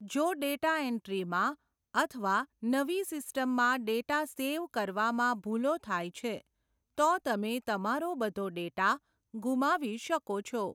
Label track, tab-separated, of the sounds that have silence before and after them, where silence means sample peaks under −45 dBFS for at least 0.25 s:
1.950000	6.400000	sound
6.980000	8.970000	sound